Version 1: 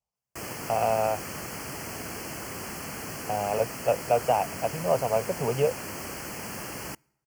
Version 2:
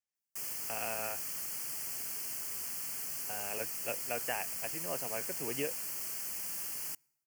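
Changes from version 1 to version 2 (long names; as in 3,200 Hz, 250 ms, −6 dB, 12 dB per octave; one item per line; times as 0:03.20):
speech: remove phaser with its sweep stopped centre 740 Hz, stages 4
master: add first-order pre-emphasis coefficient 0.9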